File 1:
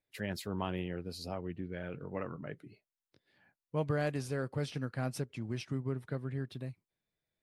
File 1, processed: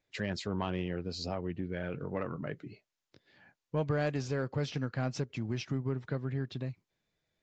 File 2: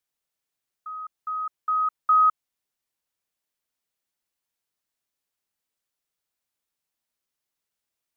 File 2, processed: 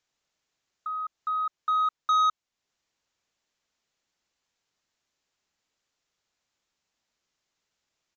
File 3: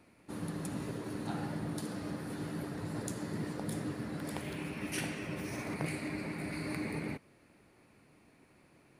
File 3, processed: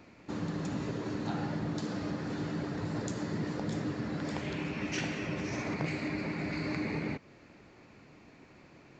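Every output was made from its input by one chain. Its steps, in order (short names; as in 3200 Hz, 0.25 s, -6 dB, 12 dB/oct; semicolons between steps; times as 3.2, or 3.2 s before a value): in parallel at +2.5 dB: compressor, threshold -43 dBFS; on the sum: soft clip -19.5 dBFS; downsampling 16000 Hz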